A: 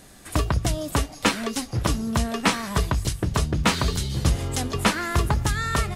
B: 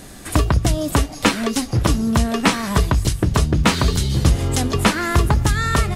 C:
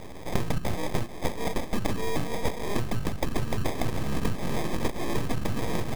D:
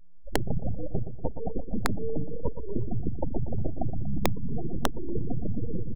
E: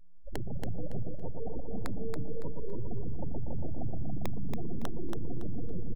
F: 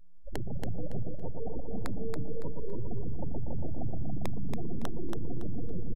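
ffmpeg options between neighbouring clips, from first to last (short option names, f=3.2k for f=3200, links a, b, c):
-filter_complex "[0:a]equalizer=f=300:t=o:w=1:g=2.5,asplit=2[a][b];[b]acompressor=threshold=-29dB:ratio=6,volume=2.5dB[c];[a][c]amix=inputs=2:normalize=0,lowshelf=f=170:g=3,volume=1dB"
-af "acompressor=threshold=-22dB:ratio=6,acrusher=samples=31:mix=1:aa=0.000001,aeval=exprs='abs(val(0))':c=same"
-af "afftfilt=real='re*gte(hypot(re,im),0.141)':imag='im*gte(hypot(re,im),0.141)':win_size=1024:overlap=0.75,aecho=1:1:119|238|357|476:0.335|0.137|0.0563|0.0231,aeval=exprs='(mod(3.98*val(0)+1,2)-1)/3.98':c=same"
-af "alimiter=limit=-22.5dB:level=0:latency=1:release=28,aecho=1:1:280|560|840|1120:0.631|0.177|0.0495|0.0139,volume=-3dB"
-af "aresample=32000,aresample=44100,volume=1dB"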